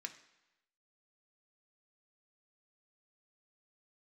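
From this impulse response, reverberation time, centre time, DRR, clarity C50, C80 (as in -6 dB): 1.0 s, 9 ms, 5.0 dB, 12.5 dB, 15.0 dB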